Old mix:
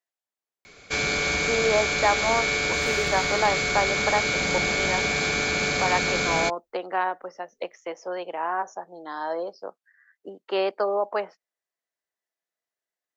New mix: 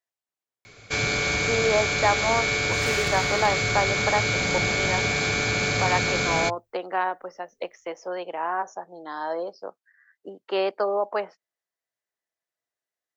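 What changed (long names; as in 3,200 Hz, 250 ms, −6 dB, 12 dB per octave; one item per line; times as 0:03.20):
second sound +6.5 dB
master: add parametric band 110 Hz +15 dB 0.31 octaves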